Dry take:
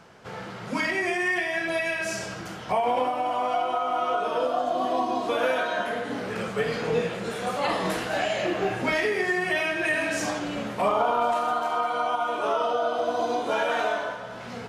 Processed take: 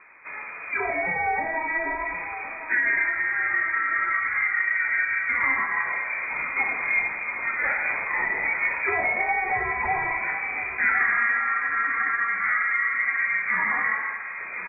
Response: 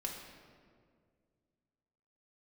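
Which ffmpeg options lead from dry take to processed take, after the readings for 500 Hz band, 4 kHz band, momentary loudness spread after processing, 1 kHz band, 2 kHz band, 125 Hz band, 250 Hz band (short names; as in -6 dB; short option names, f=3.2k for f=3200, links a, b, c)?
-12.0 dB, under -40 dB, 6 LU, -2.5 dB, +8.0 dB, -9.0 dB, -12.0 dB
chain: -af "lowpass=f=2.2k:t=q:w=0.5098,lowpass=f=2.2k:t=q:w=0.6013,lowpass=f=2.2k:t=q:w=0.9,lowpass=f=2.2k:t=q:w=2.563,afreqshift=-2600,aecho=1:1:1061|2122|3183|4244:0.237|0.0949|0.0379|0.0152,volume=1dB"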